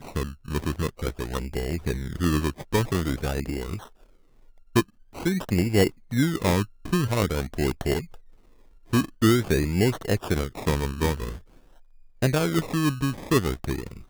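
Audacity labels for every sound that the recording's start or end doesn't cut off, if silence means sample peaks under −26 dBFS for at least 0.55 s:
4.760000	8.000000	sound
8.930000	11.290000	sound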